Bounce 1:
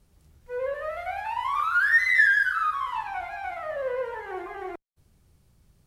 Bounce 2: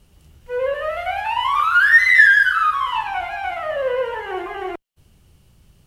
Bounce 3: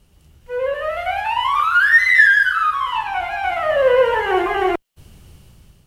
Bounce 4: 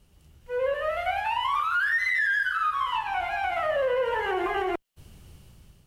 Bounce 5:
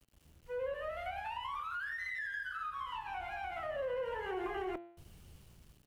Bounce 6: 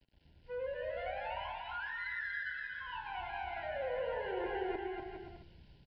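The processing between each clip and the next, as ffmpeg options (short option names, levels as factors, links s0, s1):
-af "equalizer=f=2900:w=5.9:g=11,volume=2.51"
-af "dynaudnorm=f=380:g=5:m=4.73,volume=0.891"
-af "alimiter=limit=0.211:level=0:latency=1:release=120,volume=0.562"
-filter_complex "[0:a]aeval=exprs='val(0)*gte(abs(val(0)),0.00178)':c=same,bandreject=f=114.7:t=h:w=4,bandreject=f=229.4:t=h:w=4,bandreject=f=344.1:t=h:w=4,bandreject=f=458.8:t=h:w=4,bandreject=f=573.5:t=h:w=4,bandreject=f=688.2:t=h:w=4,bandreject=f=802.9:t=h:w=4,bandreject=f=917.6:t=h:w=4,bandreject=f=1032.3:t=h:w=4,bandreject=f=1147:t=h:w=4,bandreject=f=1261.7:t=h:w=4,bandreject=f=1376.4:t=h:w=4,bandreject=f=1491.1:t=h:w=4,bandreject=f=1605.8:t=h:w=4,bandreject=f=1720.5:t=h:w=4,bandreject=f=1835.2:t=h:w=4,bandreject=f=1949.9:t=h:w=4,bandreject=f=2064.6:t=h:w=4,bandreject=f=2179.3:t=h:w=4,bandreject=f=2294:t=h:w=4,bandreject=f=2408.7:t=h:w=4,bandreject=f=2523.4:t=h:w=4,bandreject=f=2638.1:t=h:w=4,bandreject=f=2752.8:t=h:w=4,bandreject=f=2867.5:t=h:w=4,bandreject=f=2982.2:t=h:w=4,bandreject=f=3096.9:t=h:w=4,bandreject=f=3211.6:t=h:w=4,bandreject=f=3326.3:t=h:w=4,bandreject=f=3441:t=h:w=4,bandreject=f=3555.7:t=h:w=4,bandreject=f=3670.4:t=h:w=4,bandreject=f=3785.1:t=h:w=4,bandreject=f=3899.8:t=h:w=4,bandreject=f=4014.5:t=h:w=4,bandreject=f=4129.2:t=h:w=4,bandreject=f=4243.9:t=h:w=4,bandreject=f=4358.6:t=h:w=4,bandreject=f=4473.3:t=h:w=4,bandreject=f=4588:t=h:w=4,acrossover=split=390[s0][s1];[s1]acompressor=threshold=0.0178:ratio=2.5[s2];[s0][s2]amix=inputs=2:normalize=0,volume=0.447"
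-filter_complex "[0:a]asplit=2[s0][s1];[s1]aecho=0:1:240|408|525.6|607.9|665.5:0.631|0.398|0.251|0.158|0.1[s2];[s0][s2]amix=inputs=2:normalize=0,aresample=11025,aresample=44100,asuperstop=centerf=1200:order=12:qfactor=3.6,volume=0.841"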